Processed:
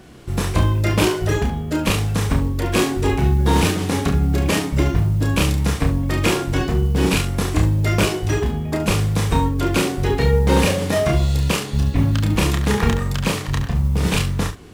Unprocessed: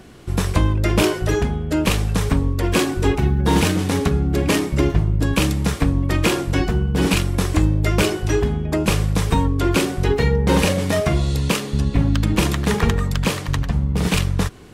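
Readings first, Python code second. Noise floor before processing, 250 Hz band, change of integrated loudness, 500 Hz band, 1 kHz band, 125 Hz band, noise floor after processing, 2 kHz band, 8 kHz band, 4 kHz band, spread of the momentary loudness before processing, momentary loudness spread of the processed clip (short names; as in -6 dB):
-29 dBFS, -1.0 dB, 0.0 dB, 0.0 dB, +1.0 dB, +1.0 dB, -28 dBFS, 0.0 dB, +0.5 dB, 0.0 dB, 4 LU, 4 LU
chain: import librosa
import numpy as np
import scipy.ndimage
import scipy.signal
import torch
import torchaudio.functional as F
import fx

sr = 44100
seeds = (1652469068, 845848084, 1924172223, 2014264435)

y = fx.room_early_taps(x, sr, ms=(30, 70), db=(-4.0, -10.5))
y = fx.mod_noise(y, sr, seeds[0], snr_db=33)
y = F.gain(torch.from_numpy(y), -1.5).numpy()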